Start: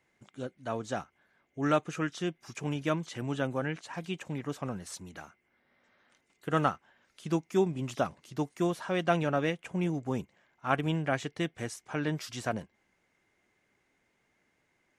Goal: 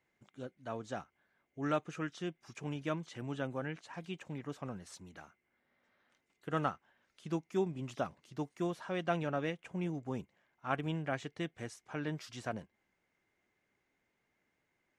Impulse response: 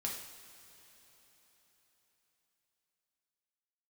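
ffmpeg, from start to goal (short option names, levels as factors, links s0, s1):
-af "highshelf=f=9600:g=-10,volume=0.473"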